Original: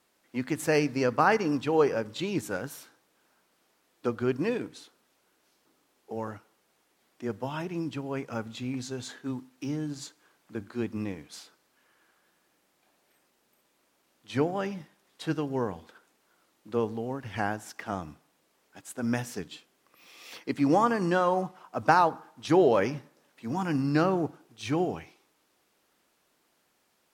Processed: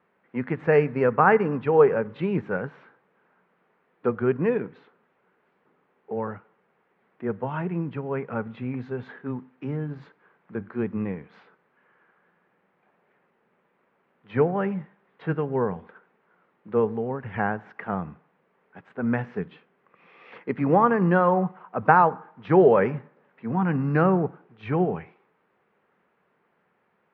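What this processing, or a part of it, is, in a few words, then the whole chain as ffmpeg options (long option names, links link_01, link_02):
bass cabinet: -af "highpass=89,equalizer=frequency=180:width_type=q:width=4:gain=6,equalizer=frequency=300:width_type=q:width=4:gain=-9,equalizer=frequency=430:width_type=q:width=4:gain=4,equalizer=frequency=650:width_type=q:width=4:gain=-3,lowpass=frequency=2100:width=0.5412,lowpass=frequency=2100:width=1.3066,volume=5dB"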